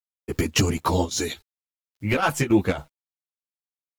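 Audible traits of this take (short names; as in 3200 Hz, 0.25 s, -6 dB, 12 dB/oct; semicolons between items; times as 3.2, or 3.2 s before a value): a quantiser's noise floor 10-bit, dither none; chopped level 3.6 Hz, depth 60%, duty 75%; a shimmering, thickened sound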